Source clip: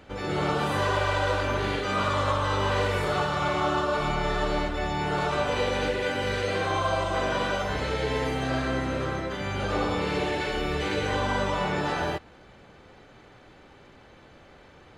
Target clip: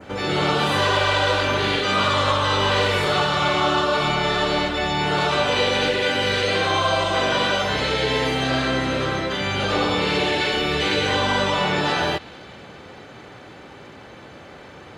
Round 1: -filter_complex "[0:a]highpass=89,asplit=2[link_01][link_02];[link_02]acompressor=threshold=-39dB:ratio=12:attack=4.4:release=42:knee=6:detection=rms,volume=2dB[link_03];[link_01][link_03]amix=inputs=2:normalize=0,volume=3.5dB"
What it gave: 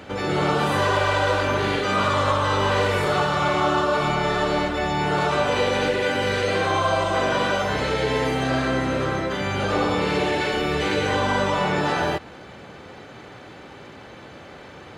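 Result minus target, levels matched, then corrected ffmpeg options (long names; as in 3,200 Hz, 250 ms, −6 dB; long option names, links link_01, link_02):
4,000 Hz band −5.5 dB
-filter_complex "[0:a]highpass=89,adynamicequalizer=threshold=0.00398:dfrequency=3600:dqfactor=1:tfrequency=3600:tqfactor=1:attack=5:release=100:ratio=0.45:range=4:mode=boostabove:tftype=bell,asplit=2[link_01][link_02];[link_02]acompressor=threshold=-39dB:ratio=12:attack=4.4:release=42:knee=6:detection=rms,volume=2dB[link_03];[link_01][link_03]amix=inputs=2:normalize=0,volume=3.5dB"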